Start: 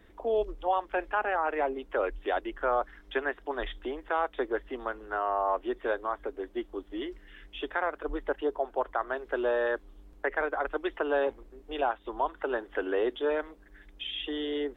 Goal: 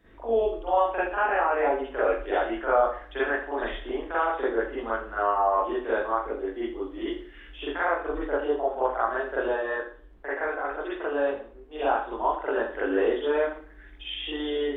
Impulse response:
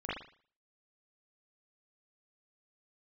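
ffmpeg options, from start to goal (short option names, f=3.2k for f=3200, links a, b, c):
-filter_complex "[0:a]asplit=3[a][b][c];[a]afade=t=out:st=9.47:d=0.02[d];[b]flanger=delay=7.5:depth=5.9:regen=-54:speed=1.3:shape=triangular,afade=t=in:st=9.47:d=0.02,afade=t=out:st=11.75:d=0.02[e];[c]afade=t=in:st=11.75:d=0.02[f];[d][e][f]amix=inputs=3:normalize=0[g];[1:a]atrim=start_sample=2205[h];[g][h]afir=irnorm=-1:irlink=0"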